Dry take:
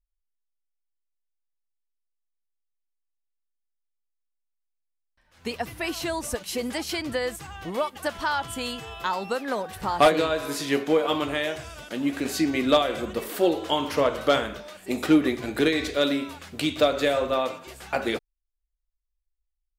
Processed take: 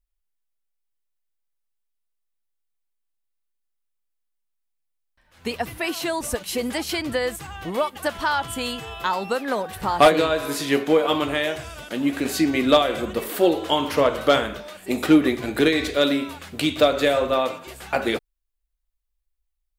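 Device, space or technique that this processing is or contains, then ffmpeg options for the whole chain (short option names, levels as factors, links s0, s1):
exciter from parts: -filter_complex "[0:a]asplit=2[s0][s1];[s1]highpass=f=4100:p=1,asoftclip=type=tanh:threshold=0.0398,highpass=f=4500:w=0.5412,highpass=f=4500:w=1.3066,volume=0.316[s2];[s0][s2]amix=inputs=2:normalize=0,asettb=1/sr,asplit=3[s3][s4][s5];[s3]atrim=end=5.784[s6];[s4]atrim=start=5.78:end=6.21,asetpts=PTS-STARTPTS,afade=t=in:d=0.004:c=qsin,afade=t=out:st=0.426:d=0.004:c=qsin,highpass=190[s7];[s5]atrim=start=6.206[s8];[s6][s7]acrossfade=d=0.004:c1=hsin:c2=qsin[s9];[s9][s8]acrossfade=d=0.004:c1=qsin:c2=hsin,volume=1.5"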